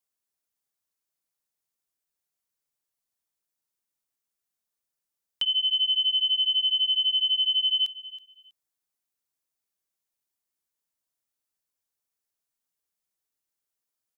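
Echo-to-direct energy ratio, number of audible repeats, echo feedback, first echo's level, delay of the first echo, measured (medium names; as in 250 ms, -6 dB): -17.0 dB, 2, 22%, -17.0 dB, 323 ms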